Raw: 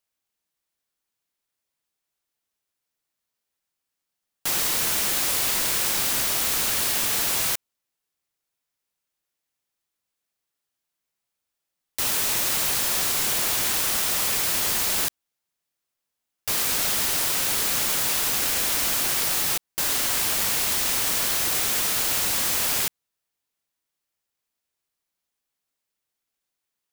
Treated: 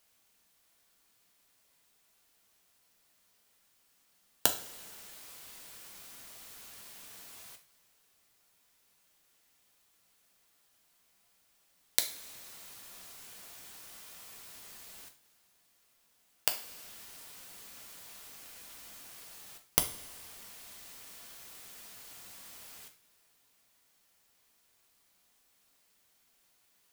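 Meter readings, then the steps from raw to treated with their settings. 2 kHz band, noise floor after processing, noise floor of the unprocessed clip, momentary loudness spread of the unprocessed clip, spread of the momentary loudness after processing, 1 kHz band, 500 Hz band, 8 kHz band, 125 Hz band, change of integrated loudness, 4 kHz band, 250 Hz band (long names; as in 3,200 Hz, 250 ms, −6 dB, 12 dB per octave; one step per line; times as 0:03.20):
−20.0 dB, −70 dBFS, −84 dBFS, 3 LU, 17 LU, −18.0 dB, −15.0 dB, −18.5 dB, −16.5 dB, −18.5 dB, −17.5 dB, −17.0 dB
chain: gate with flip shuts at −16 dBFS, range −40 dB
coupled-rooms reverb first 0.4 s, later 2.3 s, from −18 dB, DRR 3.5 dB
level +11.5 dB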